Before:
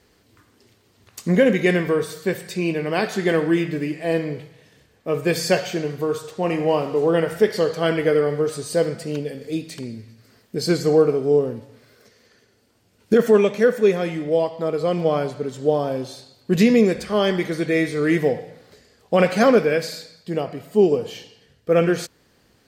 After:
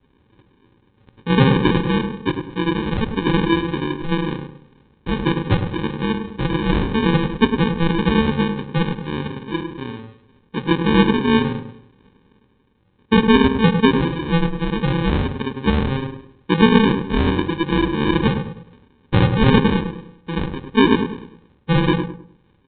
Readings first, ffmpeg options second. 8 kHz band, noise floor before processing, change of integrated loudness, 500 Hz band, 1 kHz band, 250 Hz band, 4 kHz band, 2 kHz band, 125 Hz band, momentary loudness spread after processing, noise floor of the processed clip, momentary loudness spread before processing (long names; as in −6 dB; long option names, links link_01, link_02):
below −40 dB, −60 dBFS, +1.5 dB, −4.5 dB, +5.5 dB, +5.0 dB, +6.0 dB, +3.0 dB, +8.0 dB, 14 LU, −59 dBFS, 13 LU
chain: -filter_complex "[0:a]aresample=8000,acrusher=samples=12:mix=1:aa=0.000001,aresample=44100,asplit=2[link_01][link_02];[link_02]adelay=102,lowpass=frequency=1300:poles=1,volume=-6.5dB,asplit=2[link_03][link_04];[link_04]adelay=102,lowpass=frequency=1300:poles=1,volume=0.34,asplit=2[link_05][link_06];[link_06]adelay=102,lowpass=frequency=1300:poles=1,volume=0.34,asplit=2[link_07][link_08];[link_08]adelay=102,lowpass=frequency=1300:poles=1,volume=0.34[link_09];[link_01][link_03][link_05][link_07][link_09]amix=inputs=5:normalize=0,volume=1dB"